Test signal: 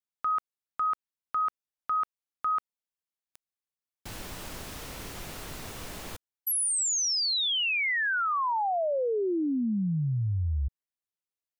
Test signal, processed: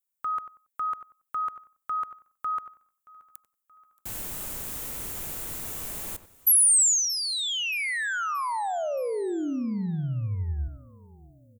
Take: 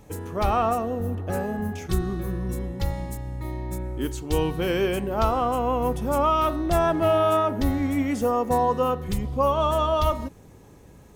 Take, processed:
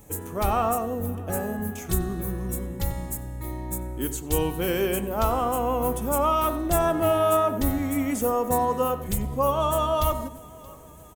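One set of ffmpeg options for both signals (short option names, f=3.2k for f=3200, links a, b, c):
-filter_complex "[0:a]asplit=2[a][b];[b]aecho=0:1:626|1252|1878|2504:0.0708|0.0389|0.0214|0.0118[c];[a][c]amix=inputs=2:normalize=0,aexciter=amount=3.2:drive=6.7:freq=6.9k,asplit=2[d][e];[e]adelay=93,lowpass=f=1.9k:p=1,volume=-11.5dB,asplit=2[f][g];[g]adelay=93,lowpass=f=1.9k:p=1,volume=0.24,asplit=2[h][i];[i]adelay=93,lowpass=f=1.9k:p=1,volume=0.24[j];[f][h][j]amix=inputs=3:normalize=0[k];[d][k]amix=inputs=2:normalize=0,volume=-1.5dB"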